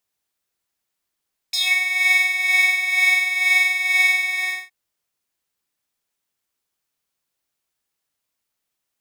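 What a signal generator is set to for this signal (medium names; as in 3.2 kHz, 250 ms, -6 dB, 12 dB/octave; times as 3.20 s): synth patch with tremolo F#5, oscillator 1 square, oscillator 2 square, interval 0 st, sub -2 dB, noise -30 dB, filter highpass, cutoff 1.8 kHz, Q 5.8, filter envelope 1.5 oct, filter decay 0.19 s, filter sustain 15%, attack 8.5 ms, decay 0.06 s, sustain -4 dB, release 0.44 s, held 2.73 s, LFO 2.1 Hz, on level 7.5 dB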